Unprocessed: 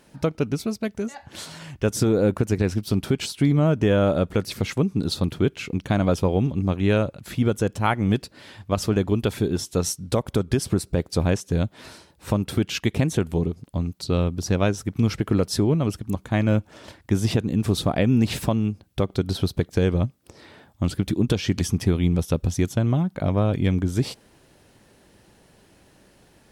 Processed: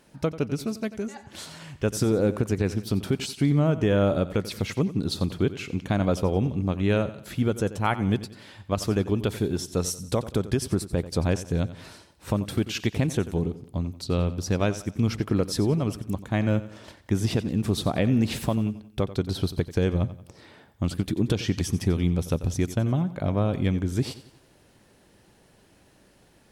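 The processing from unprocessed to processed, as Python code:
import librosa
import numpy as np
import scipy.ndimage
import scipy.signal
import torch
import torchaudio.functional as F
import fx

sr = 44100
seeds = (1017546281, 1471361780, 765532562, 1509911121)

y = fx.echo_feedback(x, sr, ms=90, feedback_pct=41, wet_db=-15)
y = F.gain(torch.from_numpy(y), -3.0).numpy()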